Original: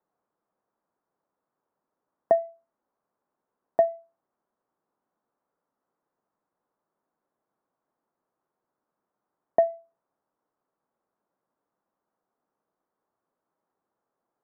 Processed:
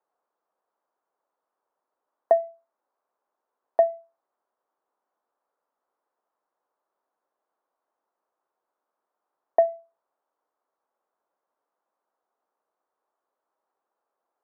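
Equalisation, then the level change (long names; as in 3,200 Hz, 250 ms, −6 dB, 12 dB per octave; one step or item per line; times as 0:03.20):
high-pass filter 540 Hz 12 dB per octave
low-pass filter 1,500 Hz 6 dB per octave
+4.0 dB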